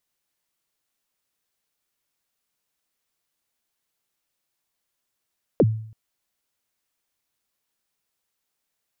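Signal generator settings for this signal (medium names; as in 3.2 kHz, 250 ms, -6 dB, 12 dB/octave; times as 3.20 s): kick drum length 0.33 s, from 590 Hz, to 110 Hz, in 44 ms, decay 0.59 s, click off, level -10.5 dB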